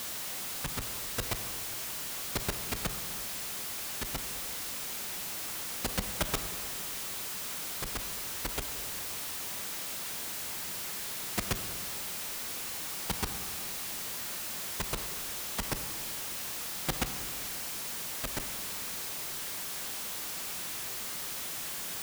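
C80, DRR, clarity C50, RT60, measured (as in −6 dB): 10.0 dB, 8.0 dB, 9.0 dB, 2.0 s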